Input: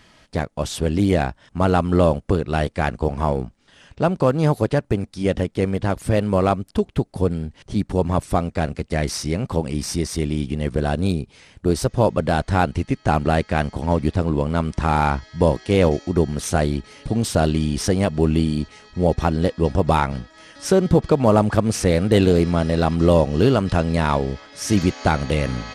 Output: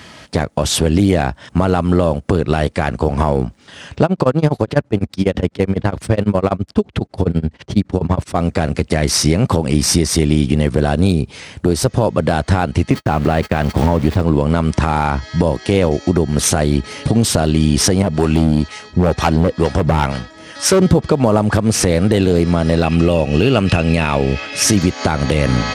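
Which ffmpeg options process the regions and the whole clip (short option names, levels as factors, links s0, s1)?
-filter_complex "[0:a]asettb=1/sr,asplit=3[s0][s1][s2];[s0]atrim=end=4.044[s3];[s1]atrim=start=4.04:end=8.36,asetpts=PTS-STARTPTS,afade=t=in:d=0.004:c=qsin,afade=t=out:st=4.316:d=0.004:c=qsin,tremolo=f=12:d=0.97,adynamicsmooth=sensitivity=7:basefreq=5900[s4];[s2]atrim=start=8.356[s5];[s3][s4]acrossfade=d=0.004:c1=hsin:c2=qsin[s6];[s6][s5]acrossfade=d=0.004:c1=qsin:c2=hsin,asettb=1/sr,asplit=3[s7][s8][s9];[s7]atrim=end=12.904[s10];[s8]atrim=start=12.9:end=14.22,asetpts=PTS-STARTPTS,afade=t=in:d=0.004:c=qsin,afade=t=out:st=1.316:d=0.004:c=qsin,aeval=exprs='val(0)+0.5*0.0355*sgn(val(0))':c=same,agate=range=0.00178:threshold=0.0355:ratio=16:release=100:detection=peak,equalizer=f=11000:w=0.47:g=-6.5[s11];[s9]atrim=start=14.216[s12];[s10][s11]acrossfade=d=0.004:c1=hsin:c2=qsin[s13];[s13][s12]acrossfade=d=0.004:c1=qsin:c2=hsin,asettb=1/sr,asplit=3[s14][s15][s16];[s14]atrim=end=18.024[s17];[s15]atrim=start=18.02:end=20.82,asetpts=PTS-STARTPTS,afade=t=in:d=0.004:c=qsin,afade=t=out:st=2.796:d=0.004:c=qsin,acrossover=split=580[s18][s19];[s18]aeval=exprs='val(0)*(1-0.7/2+0.7/2*cos(2*PI*2.1*n/s))':c=same[s20];[s19]aeval=exprs='val(0)*(1-0.7/2-0.7/2*cos(2*PI*2.1*n/s))':c=same[s21];[s20][s21]amix=inputs=2:normalize=0,asoftclip=type=hard:threshold=0.126[s22];[s16]atrim=start=20.816[s23];[s17][s22]acrossfade=d=0.004:c1=hsin:c2=qsin[s24];[s24][s23]acrossfade=d=0.004:c1=qsin:c2=hsin,asettb=1/sr,asplit=3[s25][s26][s27];[s25]atrim=end=22.834[s28];[s26]atrim=start=22.83:end=24.64,asetpts=PTS-STARTPTS,afade=t=in:d=0.004:c=qsin,afade=t=out:st=1.806:d=0.004:c=qsin,equalizer=f=2600:t=o:w=0.29:g=14,bandreject=f=1000:w=9.2[s29];[s27]atrim=start=24.636[s30];[s28][s29]acrossfade=d=0.004:c1=hsin:c2=qsin[s31];[s31][s30]acrossfade=d=0.004:c1=qsin:c2=hsin,highpass=f=62:w=0.5412,highpass=f=62:w=1.3066,acompressor=threshold=0.0794:ratio=6,alimiter=level_in=5.62:limit=0.891:release=50:level=0:latency=1,volume=0.891"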